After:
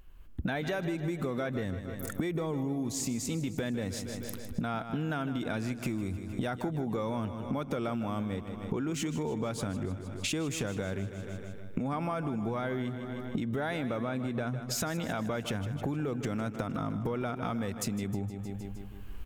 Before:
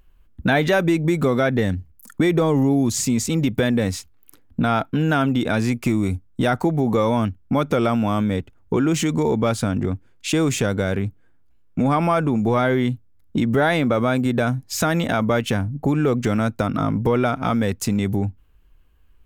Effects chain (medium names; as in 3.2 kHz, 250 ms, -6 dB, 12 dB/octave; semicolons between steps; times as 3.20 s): recorder AGC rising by 15 dB/s; 13.99–14.69 s: treble shelf 5.2 kHz -> 8.6 kHz -9.5 dB; feedback delay 155 ms, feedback 58%, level -13 dB; compression 5:1, threshold -32 dBFS, peak gain reduction 16 dB